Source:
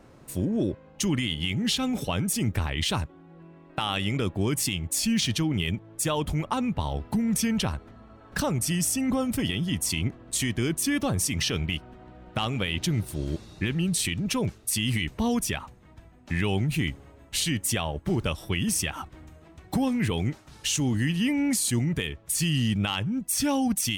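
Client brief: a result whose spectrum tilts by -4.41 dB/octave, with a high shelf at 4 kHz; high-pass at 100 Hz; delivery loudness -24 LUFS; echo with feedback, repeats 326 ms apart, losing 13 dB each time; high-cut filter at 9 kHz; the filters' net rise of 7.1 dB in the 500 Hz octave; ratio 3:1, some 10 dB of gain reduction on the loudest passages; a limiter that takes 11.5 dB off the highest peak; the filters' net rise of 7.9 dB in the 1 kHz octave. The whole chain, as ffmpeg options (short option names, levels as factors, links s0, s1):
-af "highpass=100,lowpass=9000,equalizer=f=500:t=o:g=7,equalizer=f=1000:t=o:g=8,highshelf=f=4000:g=-5.5,acompressor=threshold=0.0316:ratio=3,alimiter=limit=0.0668:level=0:latency=1,aecho=1:1:326|652|978:0.224|0.0493|0.0108,volume=3.16"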